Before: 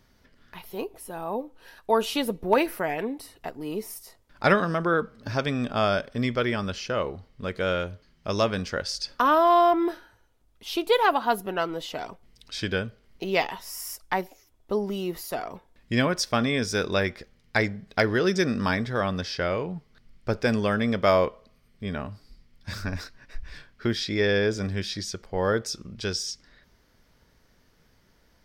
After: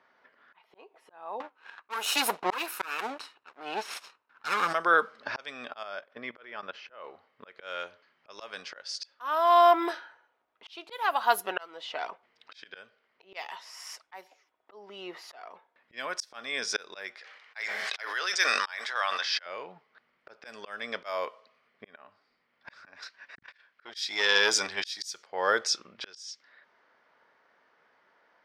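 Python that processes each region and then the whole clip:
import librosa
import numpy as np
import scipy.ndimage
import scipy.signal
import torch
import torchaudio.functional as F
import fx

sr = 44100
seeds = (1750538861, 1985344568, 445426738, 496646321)

y = fx.chain(x, sr, fx.lower_of_two(delay_ms=0.74),
    fx.leveller(passes=2), at=(1.4, 4.73))
y = fx.chain(y, sr, fx.high_shelf(hz=2900.0, db=-8.5),
    fx.level_steps(step_db=15),
    fx.brickwall_lowpass(high_hz=14000.0), at=(5.83, 7.04))
y = fx.chain(y, sr, fx.highpass(hz=870.0, slope=12),
    fx.sustainer(db_per_s=40.0), at=(17.18, 19.46))
y = fx.chain(y, sr, fx.high_shelf(hz=2400.0, db=11.0),
    fx.transformer_sat(knee_hz=800.0), at=(23.02, 25.23))
y = scipy.signal.sosfilt(scipy.signal.butter(2, 780.0, 'highpass', fs=sr, output='sos'), y)
y = fx.env_lowpass(y, sr, base_hz=1600.0, full_db=-24.0)
y = fx.auto_swell(y, sr, attack_ms=637.0)
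y = y * librosa.db_to_amplitude(7.0)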